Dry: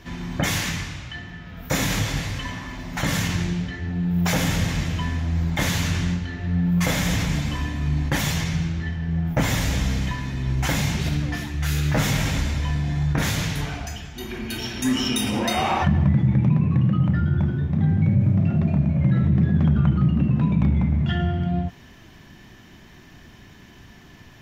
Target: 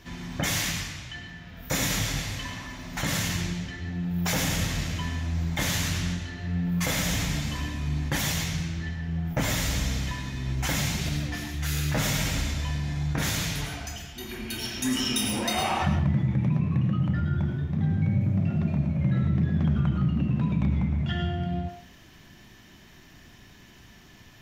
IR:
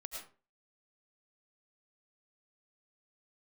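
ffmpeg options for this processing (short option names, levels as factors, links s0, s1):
-filter_complex "[0:a]asplit=2[s0][s1];[1:a]atrim=start_sample=2205,highshelf=f=2300:g=11.5[s2];[s1][s2]afir=irnorm=-1:irlink=0,volume=0.891[s3];[s0][s3]amix=inputs=2:normalize=0,volume=0.355"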